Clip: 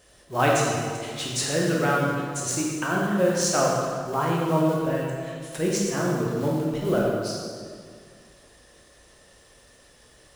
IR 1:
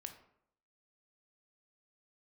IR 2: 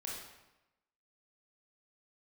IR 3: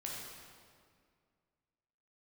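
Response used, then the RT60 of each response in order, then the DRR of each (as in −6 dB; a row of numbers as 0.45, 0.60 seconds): 3; 0.70, 1.0, 2.1 seconds; 5.5, −4.0, −4.0 decibels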